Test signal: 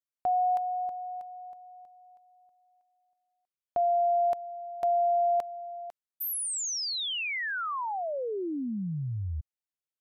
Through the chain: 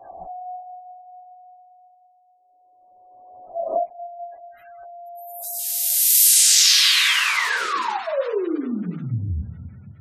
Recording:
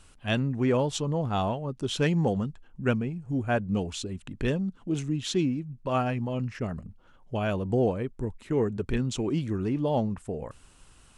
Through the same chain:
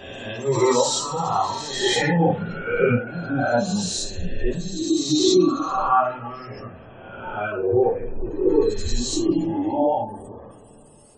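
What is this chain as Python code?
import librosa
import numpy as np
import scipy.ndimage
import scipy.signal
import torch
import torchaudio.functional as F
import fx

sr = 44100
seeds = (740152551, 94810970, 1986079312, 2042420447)

y = fx.spec_swells(x, sr, rise_s=2.61)
y = fx.rev_double_slope(y, sr, seeds[0], early_s=0.41, late_s=4.3, knee_db=-18, drr_db=-6.5)
y = fx.spec_gate(y, sr, threshold_db=-30, keep='strong')
y = fx.noise_reduce_blind(y, sr, reduce_db=16)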